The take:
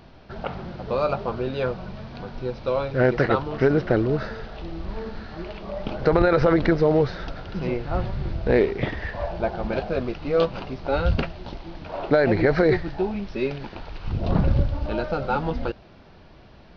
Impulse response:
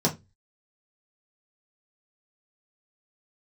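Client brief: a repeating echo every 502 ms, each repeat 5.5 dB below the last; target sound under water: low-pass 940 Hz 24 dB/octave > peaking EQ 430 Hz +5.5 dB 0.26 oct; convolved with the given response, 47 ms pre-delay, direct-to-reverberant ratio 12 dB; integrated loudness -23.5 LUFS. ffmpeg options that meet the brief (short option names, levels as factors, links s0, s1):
-filter_complex "[0:a]aecho=1:1:502|1004|1506|2008|2510|3012|3514:0.531|0.281|0.149|0.079|0.0419|0.0222|0.0118,asplit=2[s0][s1];[1:a]atrim=start_sample=2205,adelay=47[s2];[s1][s2]afir=irnorm=-1:irlink=0,volume=0.0668[s3];[s0][s3]amix=inputs=2:normalize=0,lowpass=f=940:w=0.5412,lowpass=f=940:w=1.3066,equalizer=f=430:t=o:w=0.26:g=5.5,volume=0.75"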